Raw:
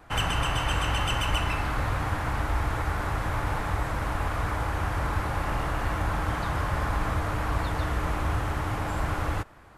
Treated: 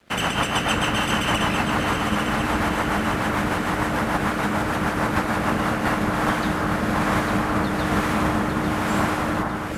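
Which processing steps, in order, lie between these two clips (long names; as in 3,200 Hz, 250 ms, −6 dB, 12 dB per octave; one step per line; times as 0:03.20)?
ceiling on every frequency bin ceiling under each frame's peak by 13 dB
high-pass filter 91 Hz 6 dB per octave
parametric band 210 Hz +11 dB 0.31 octaves
dead-zone distortion −51.5 dBFS
rotating-speaker cabinet horn 6.7 Hz, later 1.1 Hz, at 0:05.37
delay that swaps between a low-pass and a high-pass 425 ms, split 1,800 Hz, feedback 75%, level −4.5 dB
level +6 dB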